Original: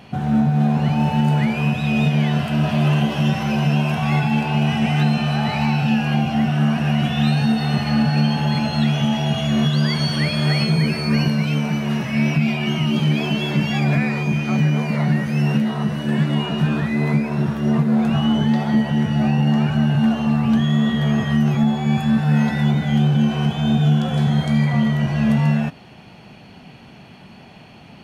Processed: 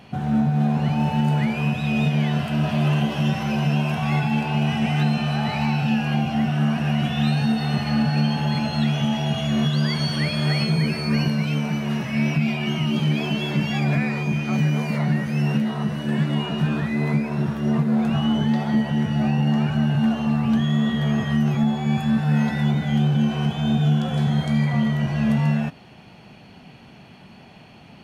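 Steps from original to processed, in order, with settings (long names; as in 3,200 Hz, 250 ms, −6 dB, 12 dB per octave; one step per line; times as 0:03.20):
0:14.52–0:14.97: high-shelf EQ 7,600 Hz → 5,200 Hz +6.5 dB
level −3 dB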